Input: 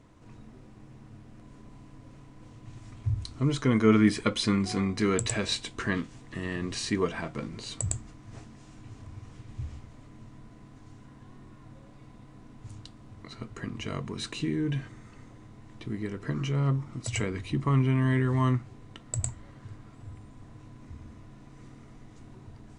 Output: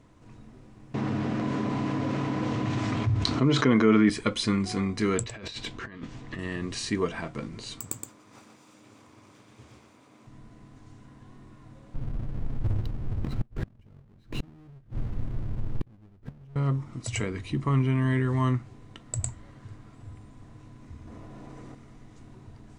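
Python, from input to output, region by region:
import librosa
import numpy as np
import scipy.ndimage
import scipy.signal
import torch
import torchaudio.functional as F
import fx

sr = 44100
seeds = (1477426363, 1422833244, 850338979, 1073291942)

y = fx.chain(x, sr, fx.highpass(hz=170.0, slope=12),
    fx.air_absorb(metres=130.0),
    fx.env_flatten(amount_pct=70), at=(0.94, 4.1))
y = fx.chain(y, sr, fx.lowpass(hz=5000.0, slope=12),
    fx.over_compress(threshold_db=-39.0, ratio=-1.0),
    fx.clip_hard(threshold_db=-24.5), at=(5.23, 6.39))
y = fx.chain(y, sr, fx.lower_of_two(delay_ms=0.83),
    fx.highpass(hz=270.0, slope=12),
    fx.echo_single(ms=120, db=-5.5), at=(7.8, 10.27))
y = fx.chain(y, sr, fx.halfwave_hold(),
    fx.riaa(side='playback'),
    fx.gate_flip(shuts_db=-17.0, range_db=-33), at=(11.94, 16.56))
y = fx.chain(y, sr, fx.peak_eq(hz=570.0, db=8.0, octaves=2.1),
    fx.env_flatten(amount_pct=100), at=(21.07, 21.75))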